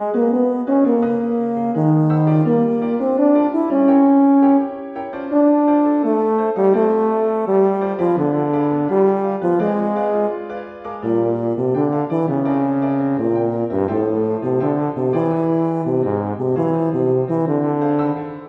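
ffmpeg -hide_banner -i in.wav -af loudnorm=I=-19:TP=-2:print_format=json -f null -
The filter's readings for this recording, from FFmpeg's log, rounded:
"input_i" : "-17.8",
"input_tp" : "-3.0",
"input_lra" : "3.8",
"input_thresh" : "-27.9",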